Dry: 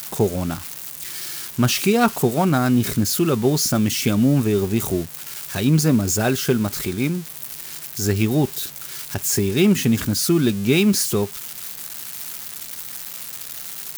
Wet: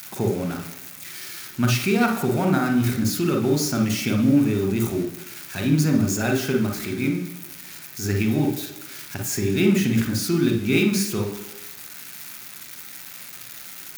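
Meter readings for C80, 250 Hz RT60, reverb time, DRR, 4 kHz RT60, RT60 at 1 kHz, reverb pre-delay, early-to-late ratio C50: 10.0 dB, 1.0 s, 1.2 s, 2.5 dB, 1.2 s, 1.2 s, 37 ms, 5.5 dB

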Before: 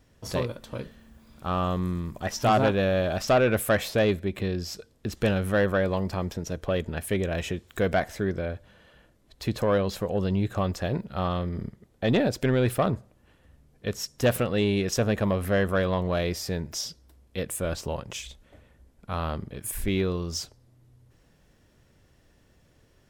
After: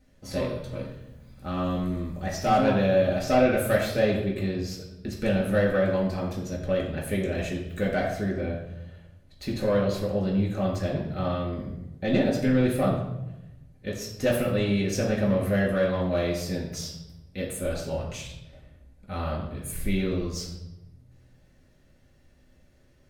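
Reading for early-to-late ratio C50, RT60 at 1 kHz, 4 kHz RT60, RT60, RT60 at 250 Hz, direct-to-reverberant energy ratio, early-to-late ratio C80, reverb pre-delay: 4.5 dB, 0.85 s, 0.70 s, 0.90 s, 1.2 s, -3.5 dB, 7.0 dB, 4 ms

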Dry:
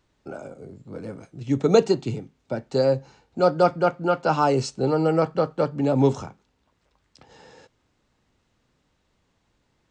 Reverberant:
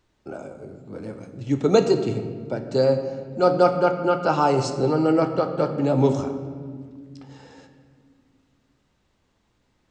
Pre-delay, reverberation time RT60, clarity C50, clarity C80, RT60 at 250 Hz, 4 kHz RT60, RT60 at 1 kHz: 3 ms, 1.9 s, 9.0 dB, 10.0 dB, 3.4 s, 1.1 s, 1.6 s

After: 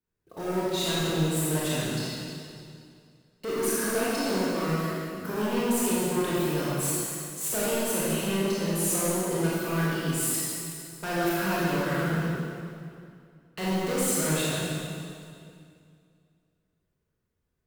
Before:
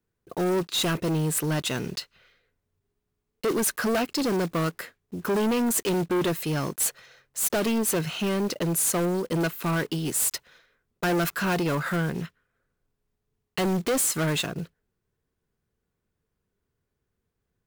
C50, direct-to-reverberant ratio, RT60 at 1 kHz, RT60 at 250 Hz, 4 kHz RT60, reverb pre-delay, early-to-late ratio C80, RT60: -5.0 dB, -8.5 dB, 2.3 s, 2.6 s, 2.1 s, 22 ms, -2.5 dB, 2.3 s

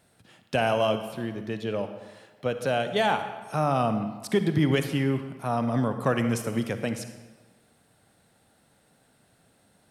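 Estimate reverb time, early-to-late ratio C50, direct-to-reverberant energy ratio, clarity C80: 1.4 s, 9.0 dB, 8.5 dB, 10.0 dB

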